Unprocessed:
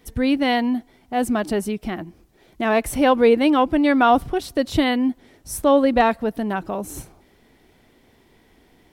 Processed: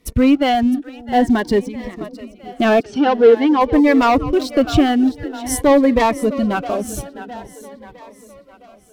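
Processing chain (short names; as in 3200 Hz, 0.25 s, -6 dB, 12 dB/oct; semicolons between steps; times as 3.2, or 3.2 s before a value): treble ducked by the level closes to 2300 Hz, closed at -14.5 dBFS; reverb removal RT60 1.9 s; sample leveller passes 2; 1.6–2.01 compressor 12:1, threshold -30 dBFS, peak gain reduction 13.5 dB; 2.8–3.61 speaker cabinet 270–5300 Hz, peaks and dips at 410 Hz +9 dB, 590 Hz -10 dB, 1900 Hz -6 dB, 3800 Hz -3 dB; on a send: split-band echo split 450 Hz, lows 0.46 s, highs 0.66 s, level -14.5 dB; on the sum: cascading phaser rising 0.48 Hz; gain +2 dB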